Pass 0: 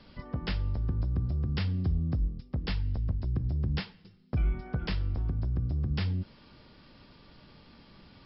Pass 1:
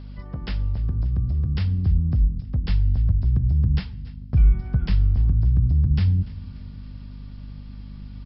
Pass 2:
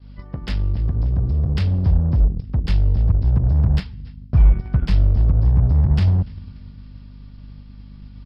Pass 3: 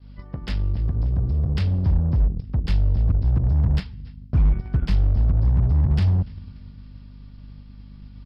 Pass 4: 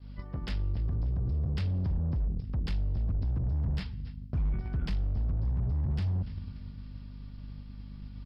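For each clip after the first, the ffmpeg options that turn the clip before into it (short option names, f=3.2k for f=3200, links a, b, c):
-af "aecho=1:1:290|580|870|1160:0.1|0.05|0.025|0.0125,asubboost=boost=4.5:cutoff=190,aeval=exprs='val(0)+0.0158*(sin(2*PI*50*n/s)+sin(2*PI*2*50*n/s)/2+sin(2*PI*3*50*n/s)/3+sin(2*PI*4*50*n/s)/4+sin(2*PI*5*50*n/s)/5)':c=same"
-filter_complex "[0:a]agate=range=-33dB:threshold=-34dB:ratio=3:detection=peak,asplit=2[a][b];[b]acrusher=bits=3:mix=0:aa=0.5,volume=-6.5dB[c];[a][c]amix=inputs=2:normalize=0"
-af "asoftclip=type=hard:threshold=-10.5dB,volume=-2.5dB"
-af "alimiter=limit=-23.5dB:level=0:latency=1:release=14,volume=-1.5dB"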